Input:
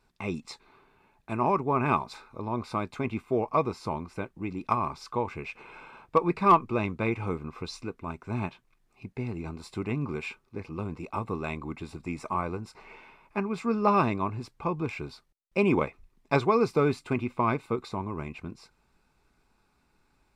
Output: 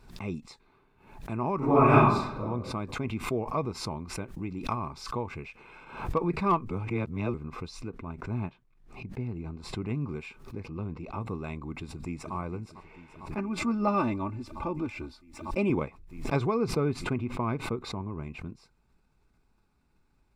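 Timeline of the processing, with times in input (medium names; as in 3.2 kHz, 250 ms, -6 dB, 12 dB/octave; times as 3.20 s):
1.58–2.40 s: reverb throw, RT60 0.83 s, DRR -12 dB
3.08–5.85 s: tape noise reduction on one side only encoder only
6.71–7.34 s: reverse
7.88–9.88 s: low-pass 3.3 kHz 6 dB/octave
10.68–11.21 s: low-pass 4.8 kHz
11.75–12.35 s: echo throw 450 ms, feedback 80%, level -13.5 dB
13.38–15.70 s: comb 3.4 ms, depth 72%
16.54–18.23 s: treble shelf 3.7 kHz -7.5 dB
whole clip: bass shelf 300 Hz +9 dB; swell ahead of each attack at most 91 dB/s; trim -7.5 dB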